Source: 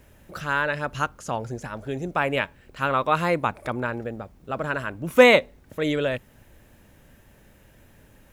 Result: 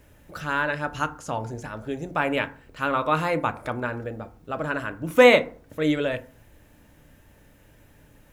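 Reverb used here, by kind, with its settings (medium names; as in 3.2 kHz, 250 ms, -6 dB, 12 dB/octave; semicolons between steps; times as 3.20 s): FDN reverb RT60 0.44 s, low-frequency decay 1.2×, high-frequency decay 0.45×, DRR 8.5 dB; trim -1.5 dB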